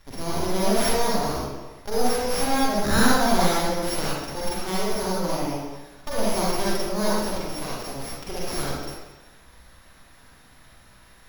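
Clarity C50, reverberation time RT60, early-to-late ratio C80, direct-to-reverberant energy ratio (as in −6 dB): −4.0 dB, 1.2 s, 0.0 dB, −7.5 dB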